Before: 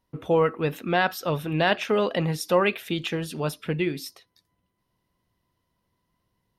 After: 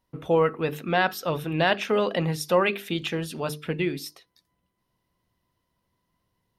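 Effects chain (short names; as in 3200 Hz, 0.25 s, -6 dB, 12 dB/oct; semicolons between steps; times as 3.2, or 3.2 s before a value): notches 50/100/150/200/250/300/350/400/450 Hz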